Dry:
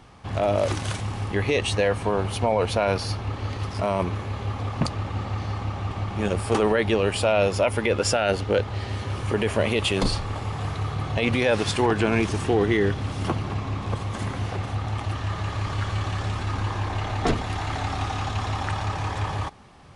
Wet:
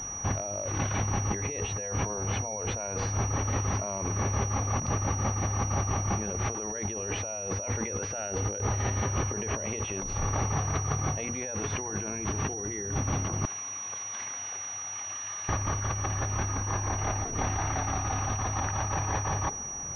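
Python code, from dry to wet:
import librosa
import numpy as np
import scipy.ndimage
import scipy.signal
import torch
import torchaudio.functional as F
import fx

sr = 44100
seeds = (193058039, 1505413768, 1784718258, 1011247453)

y = fx.hum_notches(x, sr, base_hz=60, count=8)
y = fx.differentiator(y, sr, at=(13.45, 15.49))
y = fx.over_compress(y, sr, threshold_db=-32.0, ratio=-1.0)
y = fx.pwm(y, sr, carrier_hz=5800.0)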